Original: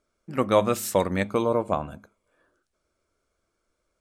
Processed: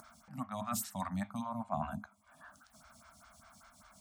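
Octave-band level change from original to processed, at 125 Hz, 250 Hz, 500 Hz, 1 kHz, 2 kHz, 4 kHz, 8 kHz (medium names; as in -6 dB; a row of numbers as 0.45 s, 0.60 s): -11.0 dB, -11.5 dB, -23.0 dB, -11.0 dB, -15.0 dB, -13.5 dB, -8.0 dB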